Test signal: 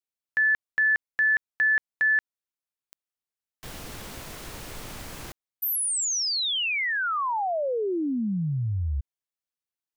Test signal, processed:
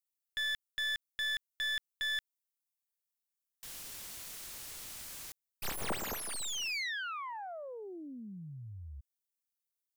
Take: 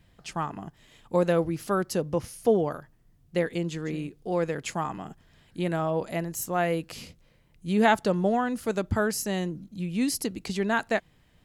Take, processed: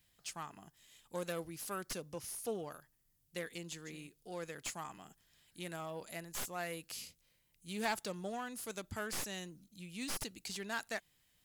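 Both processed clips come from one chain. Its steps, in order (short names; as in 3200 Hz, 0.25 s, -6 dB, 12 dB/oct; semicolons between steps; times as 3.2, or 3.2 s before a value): self-modulated delay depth 0.081 ms; pre-emphasis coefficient 0.9; slew limiter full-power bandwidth 71 Hz; gain +1 dB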